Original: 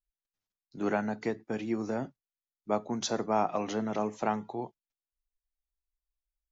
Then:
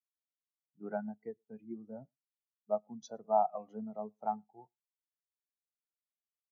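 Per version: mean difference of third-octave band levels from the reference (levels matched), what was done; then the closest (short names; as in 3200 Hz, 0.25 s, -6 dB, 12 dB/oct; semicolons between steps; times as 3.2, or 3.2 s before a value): 13.5 dB: bell 310 Hz -8 dB 1.2 oct; echo 0.114 s -18 dB; spectral expander 2.5:1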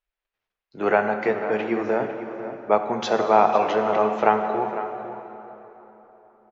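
6.0 dB: EQ curve 280 Hz 0 dB, 410 Hz +10 dB, 2600 Hz +11 dB, 6600 Hz -7 dB; outdoor echo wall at 86 m, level -11 dB; plate-style reverb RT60 3.7 s, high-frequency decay 0.7×, DRR 6 dB; gain +1 dB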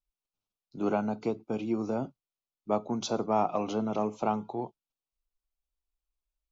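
1.5 dB: Butterworth band-stop 1800 Hz, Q 2; in parallel at -11.5 dB: soft clip -24.5 dBFS, distortion -12 dB; on the sum: LPF 3700 Hz 6 dB/oct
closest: third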